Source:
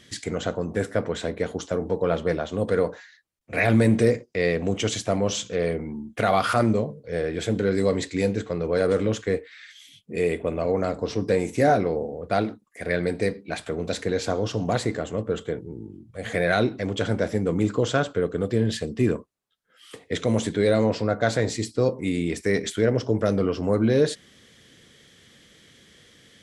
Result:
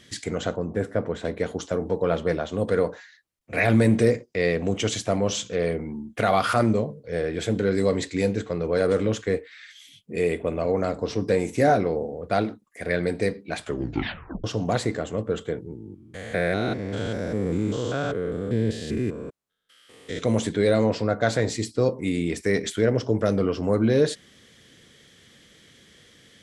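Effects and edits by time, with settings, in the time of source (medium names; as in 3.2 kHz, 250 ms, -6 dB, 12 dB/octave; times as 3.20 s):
0.56–1.25 s: treble shelf 2 kHz -10.5 dB
13.63 s: tape stop 0.81 s
15.75–20.19 s: spectrogram pixelated in time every 200 ms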